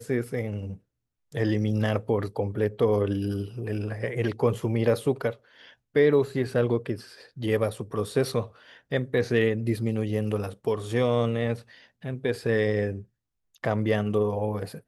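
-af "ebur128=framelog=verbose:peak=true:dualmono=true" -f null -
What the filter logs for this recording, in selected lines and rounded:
Integrated loudness:
  I:         -24.0 LUFS
  Threshold: -34.4 LUFS
Loudness range:
  LRA:         2.1 LU
  Threshold: -44.3 LUFS
  LRA low:   -25.3 LUFS
  LRA high:  -23.2 LUFS
True peak:
  Peak:      -10.1 dBFS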